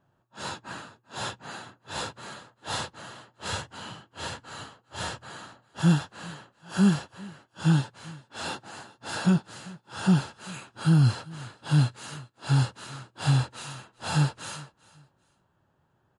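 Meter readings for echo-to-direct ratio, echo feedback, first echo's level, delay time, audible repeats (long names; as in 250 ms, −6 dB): −21.5 dB, 28%, −22.0 dB, 394 ms, 2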